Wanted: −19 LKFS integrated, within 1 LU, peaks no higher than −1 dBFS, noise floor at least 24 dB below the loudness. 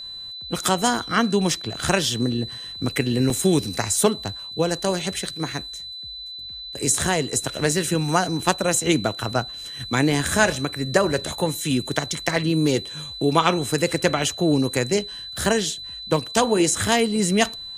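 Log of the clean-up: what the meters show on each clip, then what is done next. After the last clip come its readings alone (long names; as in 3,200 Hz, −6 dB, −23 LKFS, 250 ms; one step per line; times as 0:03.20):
number of dropouts 4; longest dropout 1.6 ms; interfering tone 4,000 Hz; level of the tone −33 dBFS; integrated loudness −22.0 LKFS; sample peak −2.5 dBFS; target loudness −19.0 LKFS
→ repair the gap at 0:01.90/0:03.30/0:05.48/0:15.39, 1.6 ms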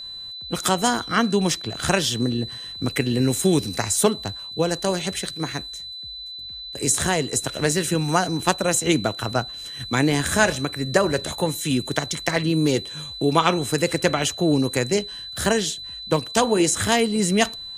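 number of dropouts 0; interfering tone 4,000 Hz; level of the tone −33 dBFS
→ notch filter 4,000 Hz, Q 30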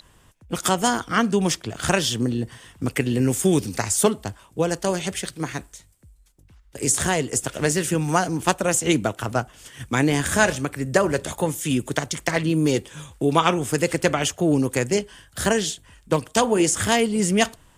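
interfering tone none found; integrated loudness −22.5 LKFS; sample peak −3.0 dBFS; target loudness −19.0 LKFS
→ level +3.5 dB
brickwall limiter −1 dBFS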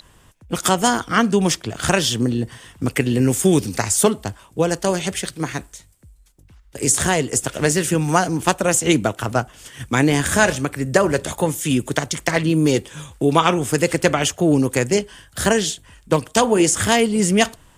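integrated loudness −19.0 LKFS; sample peak −1.0 dBFS; background noise floor −52 dBFS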